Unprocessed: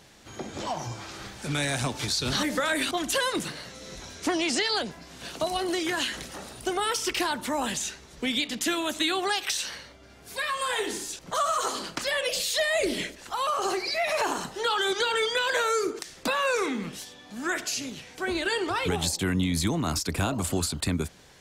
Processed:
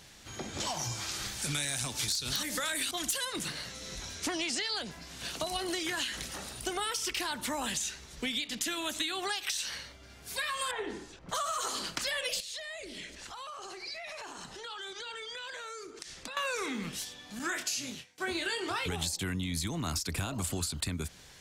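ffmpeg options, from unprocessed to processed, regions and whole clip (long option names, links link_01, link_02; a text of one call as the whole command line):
ffmpeg -i in.wav -filter_complex "[0:a]asettb=1/sr,asplit=3[link_01][link_02][link_03];[link_01]atrim=end=0.604[link_04];[link_02]atrim=start=0.6:end=3.25,asetpts=PTS-STARTPTS,afade=type=in:duration=0.004:curve=qsin,afade=type=out:start_time=2.646:duration=0.004:curve=qsin,highshelf=frequency=4300:gain=10,aeval=exprs='(mod(3.55*val(0)+1,2)-1)/3.55':channel_layout=same[link_05];[link_03]atrim=start=3.246[link_06];[link_04][link_05]acrossfade=duration=0.004:curve1=hsin:curve2=qsin[link_07];[link_07][link_06]acrossfade=duration=0.004:curve1=qsin:curve2=hsin,asettb=1/sr,asplit=3[link_08][link_09][link_10];[link_08]atrim=end=10.714[link_11];[link_09]atrim=start=10.71:end=11.29,asetpts=PTS-STARTPTS,afade=type=in:duration=0.004:curve=qsin,afade=type=out:start_time=0.576:duration=0.004:curve=qsin,lowpass=1300,aemphasis=mode=production:type=50kf,acompressor=mode=upward:threshold=-54dB:ratio=2.5:attack=3.2:release=140:knee=2.83:detection=peak[link_12];[link_10]atrim=start=11.286[link_13];[link_11][link_12]acrossfade=duration=0.004:curve1=hsin:curve2=qsin[link_14];[link_14][link_13]acrossfade=duration=0.004:curve1=qsin:curve2=hsin,asettb=1/sr,asplit=3[link_15][link_16][link_17];[link_15]atrim=end=12.404[link_18];[link_16]atrim=start=12.4:end=16.37,asetpts=PTS-STARTPTS,afade=type=in:duration=0.004:curve=qsin,afade=type=out:start_time=3.966:duration=0.004:curve=qsin,lowpass=8500,acompressor=threshold=-41dB:ratio=4:attack=3.2:release=140:knee=1:detection=peak[link_19];[link_17]atrim=start=16.366[link_20];[link_18][link_19]acrossfade=duration=0.004:curve1=hsin:curve2=qsin[link_21];[link_21][link_20]acrossfade=duration=0.004:curve1=qsin:curve2=hsin,asettb=1/sr,asplit=3[link_22][link_23][link_24];[link_22]atrim=end=17.394[link_25];[link_23]atrim=start=17.39:end=18.86,asetpts=PTS-STARTPTS,afade=type=in:duration=0.004:curve=qsin,afade=type=out:start_time=1.466:duration=0.004:curve=qsin,highpass=99,agate=range=-33dB:threshold=-37dB:ratio=3:release=100:detection=peak,asplit=2[link_26][link_27];[link_27]adelay=24,volume=-7dB[link_28];[link_26][link_28]amix=inputs=2:normalize=0,atrim=end_sample=64827[link_29];[link_24]atrim=start=18.856[link_30];[link_25][link_29]acrossfade=duration=0.004:curve1=hsin:curve2=qsin[link_31];[link_31][link_30]acrossfade=duration=0.004:curve1=qsin:curve2=hsin,equalizer=frequency=440:width=0.33:gain=-7.5,acompressor=threshold=-33dB:ratio=6,volume=2.5dB" out.wav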